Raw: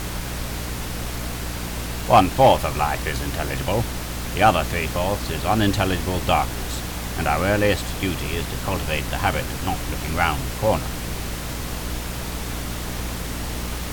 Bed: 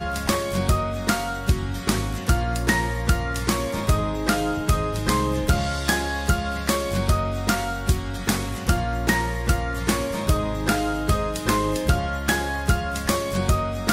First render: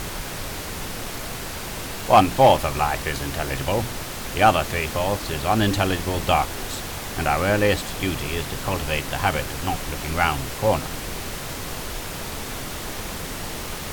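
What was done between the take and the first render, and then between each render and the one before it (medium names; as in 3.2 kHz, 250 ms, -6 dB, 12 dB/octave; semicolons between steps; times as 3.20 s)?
hum notches 60/120/180/240/300 Hz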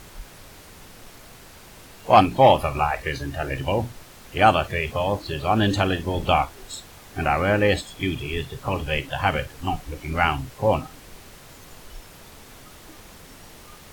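noise print and reduce 14 dB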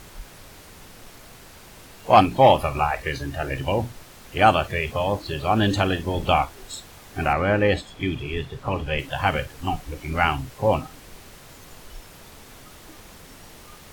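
7.33–8.99 s: low-pass 3.3 kHz 6 dB/octave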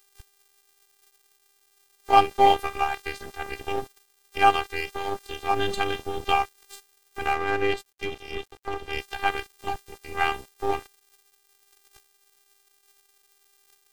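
robot voice 396 Hz; crossover distortion -33 dBFS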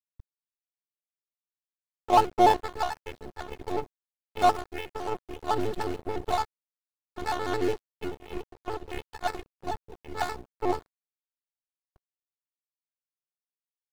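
median filter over 25 samples; vibrato with a chosen wave square 6.9 Hz, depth 160 cents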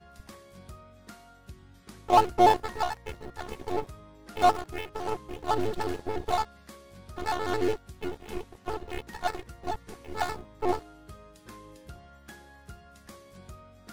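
add bed -26 dB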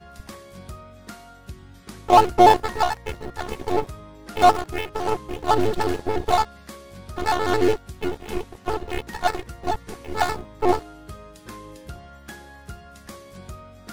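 trim +8 dB; peak limiter -3 dBFS, peak gain reduction 2.5 dB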